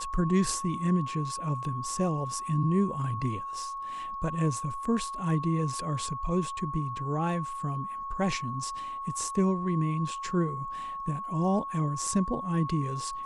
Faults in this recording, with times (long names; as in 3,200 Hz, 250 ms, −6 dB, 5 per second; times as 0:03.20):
whistle 1,100 Hz −34 dBFS